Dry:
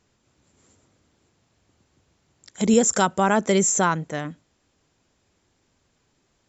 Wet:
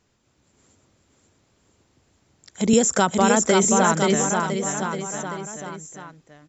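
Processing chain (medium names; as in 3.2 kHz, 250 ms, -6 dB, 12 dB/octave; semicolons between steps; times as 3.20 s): on a send: bouncing-ball echo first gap 530 ms, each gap 0.9×, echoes 5; 2.73–4.15 s: on the sum: three bands compressed up and down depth 70%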